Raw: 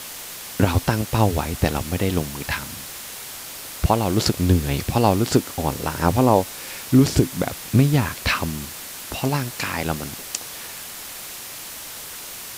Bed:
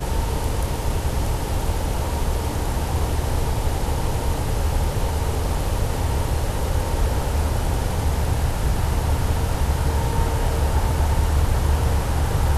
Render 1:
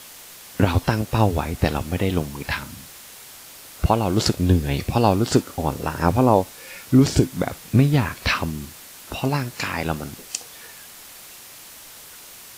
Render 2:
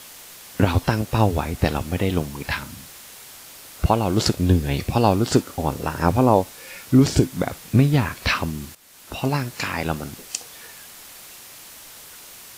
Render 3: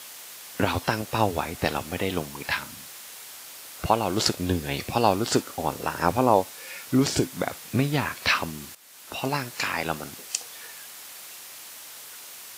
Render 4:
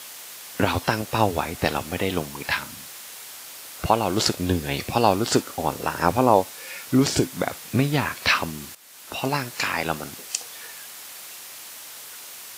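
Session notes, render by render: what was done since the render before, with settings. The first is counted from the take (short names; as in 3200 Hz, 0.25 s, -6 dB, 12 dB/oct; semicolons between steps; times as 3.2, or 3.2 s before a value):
noise print and reduce 7 dB
8.75–9.26 fade in, from -14.5 dB
HPF 75 Hz; low shelf 310 Hz -11 dB
gain +2.5 dB; limiter -3 dBFS, peak gain reduction 2 dB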